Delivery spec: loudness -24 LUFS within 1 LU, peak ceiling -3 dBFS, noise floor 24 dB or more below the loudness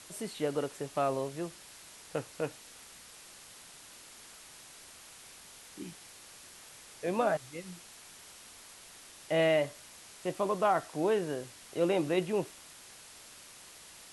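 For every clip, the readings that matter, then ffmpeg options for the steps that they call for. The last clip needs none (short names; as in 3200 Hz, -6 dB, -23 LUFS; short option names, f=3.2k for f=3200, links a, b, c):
noise floor -53 dBFS; noise floor target -57 dBFS; loudness -32.5 LUFS; peak -16.0 dBFS; loudness target -24.0 LUFS
-> -af "afftdn=nr=6:nf=-53"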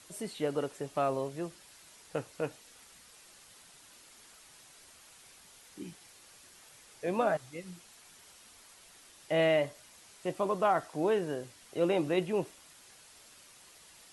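noise floor -57 dBFS; loudness -33.0 LUFS; peak -16.0 dBFS; loudness target -24.0 LUFS
-> -af "volume=9dB"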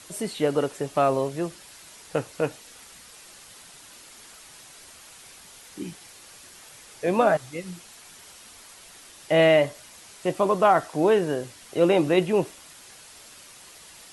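loudness -24.0 LUFS; peak -7.0 dBFS; noise floor -48 dBFS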